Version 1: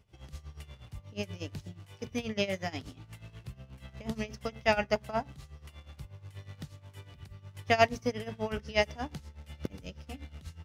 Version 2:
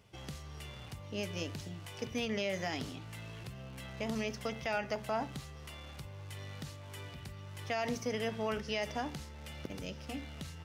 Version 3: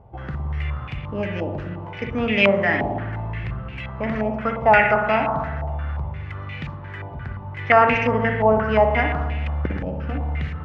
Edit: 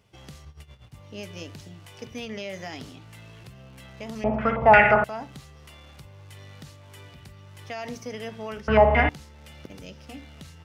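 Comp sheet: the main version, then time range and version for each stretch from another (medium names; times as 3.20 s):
2
0.45–0.94 s: from 1
4.24–5.04 s: from 3
8.68–9.09 s: from 3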